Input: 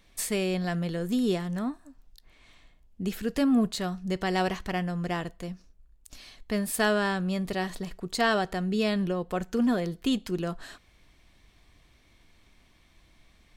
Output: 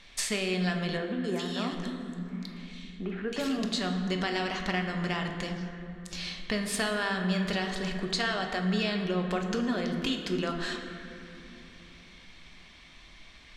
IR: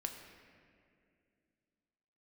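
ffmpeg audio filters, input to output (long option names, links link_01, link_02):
-filter_complex "[0:a]lowpass=4900,tiltshelf=frequency=1300:gain=-6,bandreject=frequency=55.94:width_type=h:width=4,bandreject=frequency=111.88:width_type=h:width=4,bandreject=frequency=167.82:width_type=h:width=4,bandreject=frequency=223.76:width_type=h:width=4,bandreject=frequency=279.7:width_type=h:width=4,bandreject=frequency=335.64:width_type=h:width=4,bandreject=frequency=391.58:width_type=h:width=4,bandreject=frequency=447.52:width_type=h:width=4,bandreject=frequency=503.46:width_type=h:width=4,acompressor=threshold=-37dB:ratio=6,asettb=1/sr,asplit=3[link_01][link_02][link_03];[link_01]atrim=end=0.974[link_04];[link_02]atrim=start=0.97:end=3.64,asetpts=PTS-STARTPTS,afade=type=in:duration=0.004:curve=qsin,afade=type=out:start_time=2.666:duration=0.004:curve=qsin,acrossover=split=190|2000[link_05][link_06][link_07];[link_07]adelay=270[link_08];[link_05]adelay=750[link_09];[link_09][link_06][link_08]amix=inputs=3:normalize=0,atrim=end_sample=117747[link_10];[link_03]atrim=start=3.636[link_11];[link_04][link_10]acrossfade=duration=0.004:curve1=hsin:curve2=qsin[link_12];[link_12][link_11]acrossfade=duration=0.004:curve1=qsin:curve2=hsin[link_13];[1:a]atrim=start_sample=2205,asetrate=32634,aresample=44100[link_14];[link_13][link_14]afir=irnorm=-1:irlink=0,volume=9dB"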